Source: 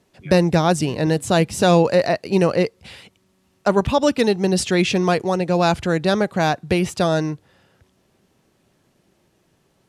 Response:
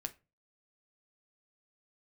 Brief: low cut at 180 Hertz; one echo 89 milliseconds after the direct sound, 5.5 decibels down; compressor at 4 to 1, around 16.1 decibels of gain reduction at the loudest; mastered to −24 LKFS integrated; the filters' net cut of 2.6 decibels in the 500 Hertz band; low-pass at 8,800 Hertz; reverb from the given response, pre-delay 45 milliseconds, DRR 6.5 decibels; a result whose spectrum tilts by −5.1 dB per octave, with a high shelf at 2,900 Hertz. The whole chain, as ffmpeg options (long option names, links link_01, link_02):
-filter_complex "[0:a]highpass=180,lowpass=8800,equalizer=frequency=500:width_type=o:gain=-3,highshelf=frequency=2900:gain=-5,acompressor=threshold=-34dB:ratio=4,aecho=1:1:89:0.531,asplit=2[link_01][link_02];[1:a]atrim=start_sample=2205,adelay=45[link_03];[link_02][link_03]afir=irnorm=-1:irlink=0,volume=-5dB[link_04];[link_01][link_04]amix=inputs=2:normalize=0,volume=10dB"